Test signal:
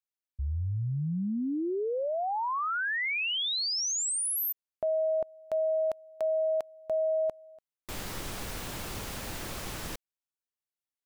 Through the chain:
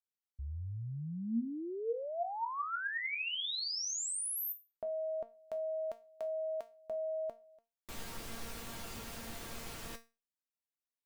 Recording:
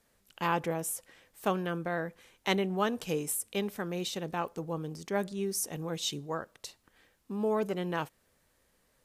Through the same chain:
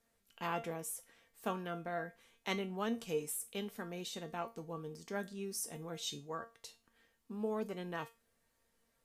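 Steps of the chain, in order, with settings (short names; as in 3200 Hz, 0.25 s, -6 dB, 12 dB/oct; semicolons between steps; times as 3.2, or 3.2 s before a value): resonator 230 Hz, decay 0.27 s, harmonics all, mix 80%; gain +2.5 dB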